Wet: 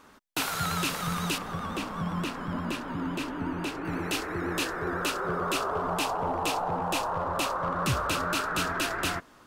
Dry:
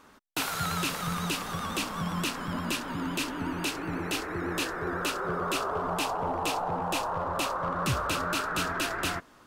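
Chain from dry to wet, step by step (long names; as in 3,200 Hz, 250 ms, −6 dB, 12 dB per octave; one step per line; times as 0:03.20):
0:01.38–0:03.85: high-shelf EQ 2,800 Hz −12 dB
level +1 dB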